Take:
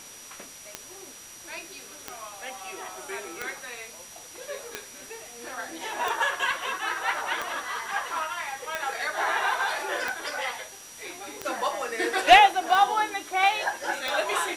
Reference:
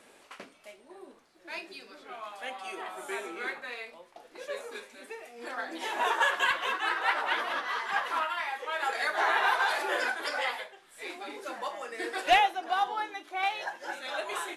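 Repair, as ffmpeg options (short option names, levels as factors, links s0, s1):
-af "adeclick=t=4,bandreject=f=5800:w=30,afwtdn=0.0056,asetnsamples=n=441:p=0,asendcmd='11.45 volume volume -8dB',volume=1"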